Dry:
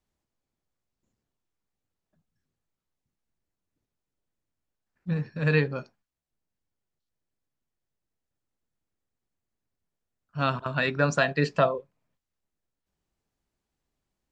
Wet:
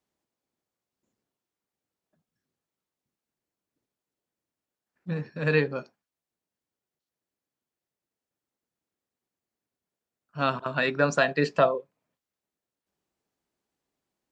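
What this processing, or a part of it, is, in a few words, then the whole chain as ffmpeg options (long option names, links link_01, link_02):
filter by subtraction: -filter_complex "[0:a]asplit=2[link_01][link_02];[link_02]lowpass=350,volume=-1[link_03];[link_01][link_03]amix=inputs=2:normalize=0"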